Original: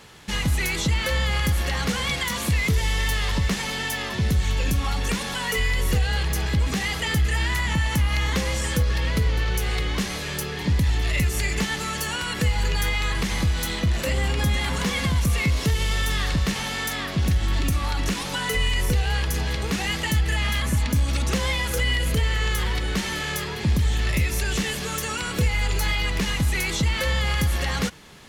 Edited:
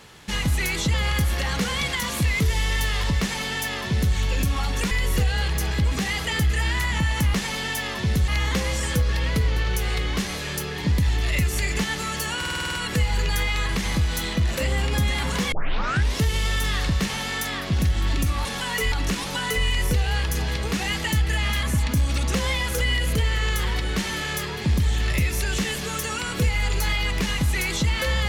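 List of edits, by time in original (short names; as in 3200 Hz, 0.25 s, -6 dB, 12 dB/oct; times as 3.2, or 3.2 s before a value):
0.94–1.22 cut
3.49–4.43 copy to 8.09
5.19–5.66 move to 17.91
12.19 stutter 0.05 s, 8 plays
14.98 tape start 0.64 s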